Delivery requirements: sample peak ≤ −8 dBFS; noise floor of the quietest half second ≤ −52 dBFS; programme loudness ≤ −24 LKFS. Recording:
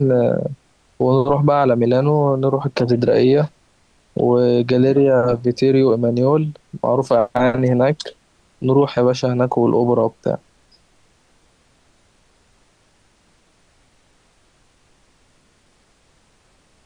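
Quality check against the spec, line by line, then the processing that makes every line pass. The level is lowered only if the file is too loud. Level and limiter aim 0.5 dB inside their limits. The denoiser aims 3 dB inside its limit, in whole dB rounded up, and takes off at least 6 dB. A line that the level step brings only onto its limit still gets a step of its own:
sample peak −5.5 dBFS: out of spec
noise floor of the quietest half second −58 dBFS: in spec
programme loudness −17.0 LKFS: out of spec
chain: level −7.5 dB

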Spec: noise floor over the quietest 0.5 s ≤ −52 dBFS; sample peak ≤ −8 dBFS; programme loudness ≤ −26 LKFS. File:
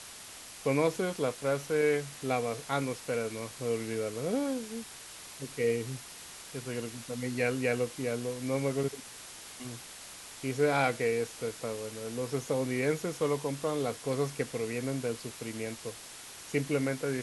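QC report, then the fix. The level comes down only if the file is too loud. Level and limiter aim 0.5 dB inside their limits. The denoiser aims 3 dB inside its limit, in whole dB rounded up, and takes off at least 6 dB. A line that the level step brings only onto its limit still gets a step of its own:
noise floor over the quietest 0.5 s −47 dBFS: out of spec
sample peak −13.5 dBFS: in spec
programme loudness −33.0 LKFS: in spec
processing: broadband denoise 8 dB, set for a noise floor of −47 dBFS

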